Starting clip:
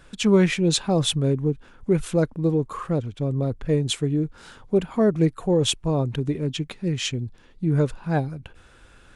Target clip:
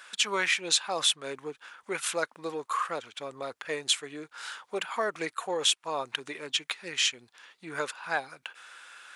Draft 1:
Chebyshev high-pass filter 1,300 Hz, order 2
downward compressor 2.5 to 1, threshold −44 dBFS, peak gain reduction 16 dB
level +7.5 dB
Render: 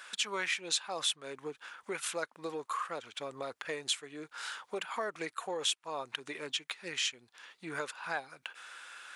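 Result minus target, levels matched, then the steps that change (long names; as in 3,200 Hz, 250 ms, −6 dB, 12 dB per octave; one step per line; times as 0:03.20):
downward compressor: peak gain reduction +7 dB
change: downward compressor 2.5 to 1, threshold −32.5 dBFS, peak gain reduction 9 dB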